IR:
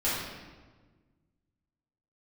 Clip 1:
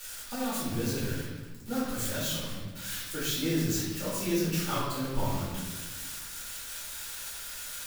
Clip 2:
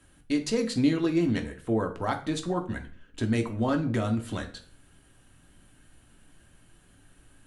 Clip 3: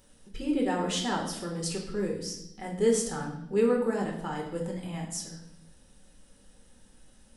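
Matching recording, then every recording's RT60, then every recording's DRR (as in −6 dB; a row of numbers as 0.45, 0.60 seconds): 1; 1.4, 0.50, 0.80 seconds; −11.0, 3.5, −1.0 decibels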